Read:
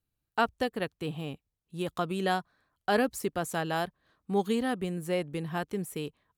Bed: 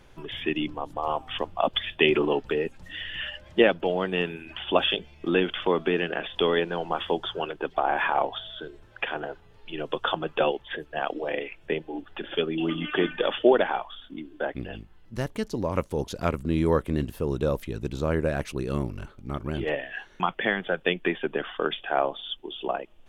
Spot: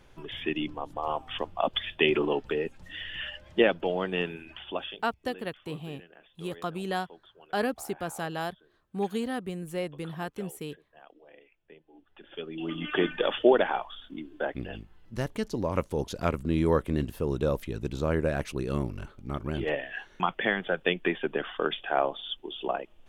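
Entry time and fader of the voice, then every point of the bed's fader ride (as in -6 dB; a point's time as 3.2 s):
4.65 s, -2.5 dB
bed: 4.4 s -3 dB
5.32 s -25 dB
11.78 s -25 dB
12.93 s -1.5 dB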